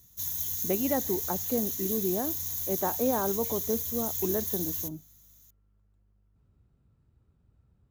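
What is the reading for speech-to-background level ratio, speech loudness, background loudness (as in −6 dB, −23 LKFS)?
−2.0 dB, −32.5 LKFS, −30.5 LKFS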